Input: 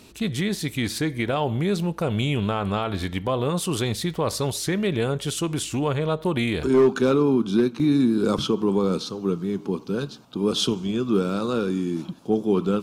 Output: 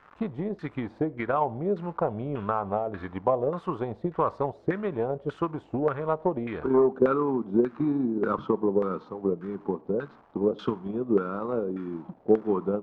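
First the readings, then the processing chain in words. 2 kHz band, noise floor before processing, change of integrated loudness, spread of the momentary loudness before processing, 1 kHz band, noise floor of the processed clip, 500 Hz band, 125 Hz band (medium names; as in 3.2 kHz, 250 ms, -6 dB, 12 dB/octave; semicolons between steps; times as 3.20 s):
-8.5 dB, -43 dBFS, -4.5 dB, 7 LU, +0.5 dB, -54 dBFS, -2.0 dB, -9.5 dB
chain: gate with hold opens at -33 dBFS; bass shelf 220 Hz -7.5 dB; crackle 470 per s -32 dBFS; LFO low-pass saw down 1.7 Hz 530–1500 Hz; transient shaper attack +7 dB, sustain -1 dB; trim -6 dB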